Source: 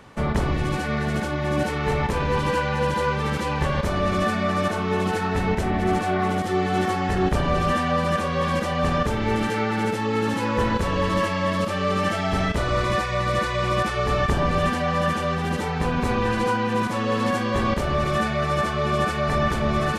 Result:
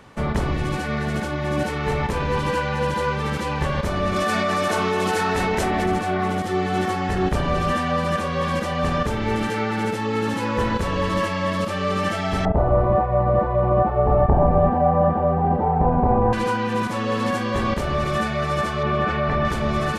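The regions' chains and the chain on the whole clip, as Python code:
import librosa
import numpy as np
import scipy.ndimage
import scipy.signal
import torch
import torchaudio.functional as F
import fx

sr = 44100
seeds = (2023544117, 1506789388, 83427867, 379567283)

y = fx.chain(x, sr, fx.bass_treble(bass_db=-8, treble_db=4),
    fx.env_flatten(amount_pct=100), at=(4.16, 5.86))
y = fx.chain(y, sr, fx.lowpass_res(hz=770.0, q=4.0),
    fx.low_shelf(hz=160.0, db=7.0), at=(12.45, 16.33))
y = fx.chain(y, sr, fx.lowpass(hz=2900.0, slope=12),
    fx.env_flatten(amount_pct=50), at=(18.83, 19.45))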